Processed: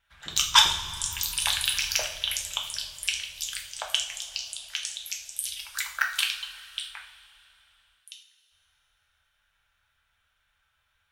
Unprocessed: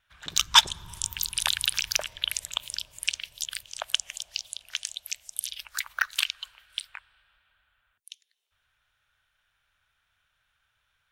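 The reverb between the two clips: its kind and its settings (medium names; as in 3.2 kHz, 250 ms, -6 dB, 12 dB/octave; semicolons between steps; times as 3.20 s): two-slope reverb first 0.47 s, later 3.1 s, from -18 dB, DRR -0.5 dB; trim -2 dB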